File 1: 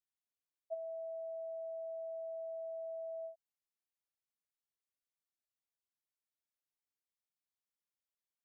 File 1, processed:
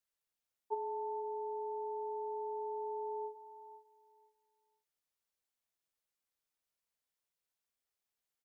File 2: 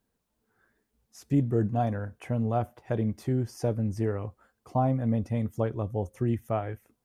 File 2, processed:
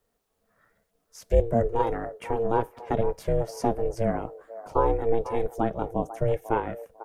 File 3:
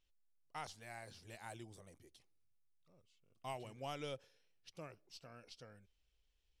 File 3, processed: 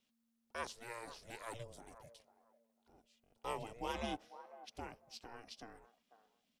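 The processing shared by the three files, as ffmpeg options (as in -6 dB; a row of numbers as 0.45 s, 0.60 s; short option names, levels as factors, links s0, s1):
-filter_complex "[0:a]lowshelf=f=150:t=q:w=1.5:g=-11.5,aeval=exprs='val(0)*sin(2*PI*230*n/s)':c=same,acrossover=split=490|1700[s0][s1][s2];[s1]asplit=2[s3][s4];[s4]adelay=497,lowpass=f=1200:p=1,volume=0.398,asplit=2[s5][s6];[s6]adelay=497,lowpass=f=1200:p=1,volume=0.24,asplit=2[s7][s8];[s8]adelay=497,lowpass=f=1200:p=1,volume=0.24[s9];[s3][s5][s7][s9]amix=inputs=4:normalize=0[s10];[s0][s10][s2]amix=inputs=3:normalize=0,volume=2.11"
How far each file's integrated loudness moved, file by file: +3.5 LU, +2.0 LU, +3.5 LU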